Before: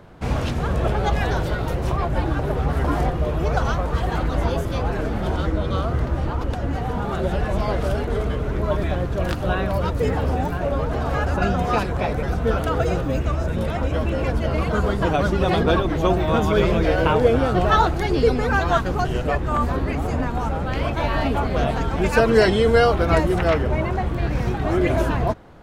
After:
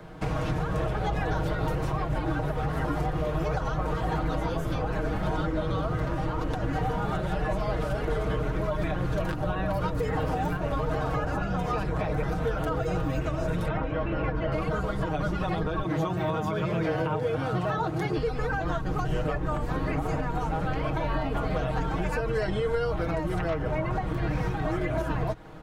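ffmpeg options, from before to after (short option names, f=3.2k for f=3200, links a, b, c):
-filter_complex "[0:a]asettb=1/sr,asplit=3[a][b][c];[a]atrim=end=13.684[d];[b]atrim=start=13.68:end=14.52,asetpts=PTS-STARTPTS,afade=t=in:d=0.004:c=qsin,afade=t=out:st=0.836:d=0.004:c=qsin,lowpass=2.6k[e];[c]atrim=start=14.516[f];[d][e]acrossfade=d=0.004:c1=hsin:c2=qsin[g];[g][f]acrossfade=d=0.004:c1=qsin:c2=hsin,asettb=1/sr,asplit=3[h][i][j];[h]atrim=end=15.834[k];[i]atrim=start=15.83:end=18.17,asetpts=PTS-STARTPTS,afade=t=in:d=0.004:c=qsin,afade=t=out:st=2.336:d=0.004:c=qsin,highpass=f=100:w=0.5412,highpass=f=100:w=1.3066[l];[j]atrim=start=18.166[m];[k][l]acrossfade=d=0.004:c1=hsin:c2=qsin[n];[n][m]acrossfade=d=0.004:c1=qsin:c2=hsin,acrossover=split=120|850|1700[o][p][q][r];[o]acompressor=threshold=-25dB:ratio=4[s];[p]acompressor=threshold=-30dB:ratio=4[t];[q]acompressor=threshold=-35dB:ratio=4[u];[r]acompressor=threshold=-46dB:ratio=4[v];[s][t][u][v]amix=inputs=4:normalize=0,aecho=1:1:6.4:0.69,alimiter=limit=-18.5dB:level=0:latency=1:release=162"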